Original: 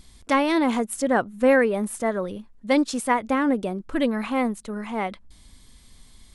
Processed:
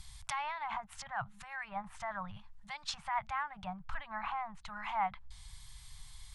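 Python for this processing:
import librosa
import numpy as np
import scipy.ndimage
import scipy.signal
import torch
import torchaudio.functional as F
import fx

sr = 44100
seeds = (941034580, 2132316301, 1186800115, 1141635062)

y = fx.over_compress(x, sr, threshold_db=-25.0, ratio=-1.0)
y = fx.env_lowpass_down(y, sr, base_hz=1300.0, full_db=-20.5)
y = scipy.signal.sosfilt(scipy.signal.ellip(3, 1.0, 40, [150.0, 800.0], 'bandstop', fs=sr, output='sos'), y)
y = y * librosa.db_to_amplitude(-3.5)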